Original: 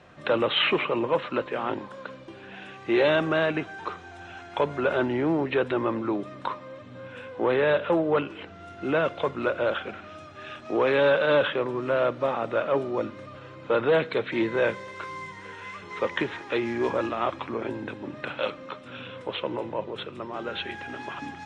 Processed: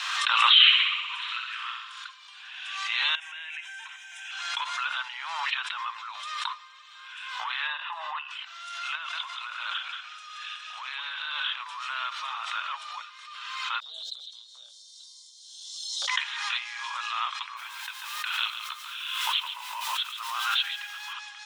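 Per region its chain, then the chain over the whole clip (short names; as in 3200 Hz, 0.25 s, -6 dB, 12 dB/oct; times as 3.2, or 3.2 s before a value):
0.54–2.08 HPF 1300 Hz 24 dB/oct + flutter echo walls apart 11 m, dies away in 1 s
3.15–4.31 compressor 12:1, threshold -32 dBFS + tilt shelf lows -8.5 dB, about 820 Hz + fixed phaser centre 1200 Hz, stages 6
7.67–8.31 LPF 1400 Hz 6 dB/oct + comb 1.1 ms, depth 57%
8.95–11.6 compressor 4:1, threshold -28 dBFS + echo 0.18 s -5.5 dB
13.8–16.08 inverse Chebyshev band-stop 940–2600 Hz + compressor 3:1, threshold -27 dBFS
17.56–21.12 added noise pink -58 dBFS + echo 0.14 s -9.5 dB
whole clip: steep high-pass 1000 Hz 48 dB/oct; resonant high shelf 2600 Hz +7 dB, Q 1.5; backwards sustainer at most 33 dB/s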